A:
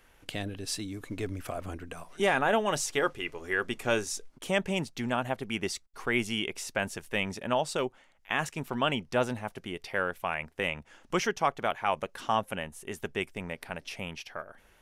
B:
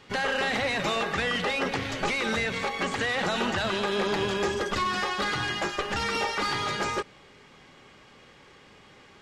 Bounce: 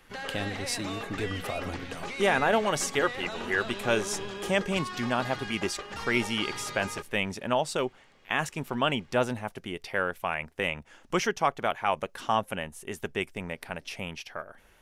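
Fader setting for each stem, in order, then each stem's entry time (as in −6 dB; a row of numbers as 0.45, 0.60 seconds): +1.5, −10.0 decibels; 0.00, 0.00 seconds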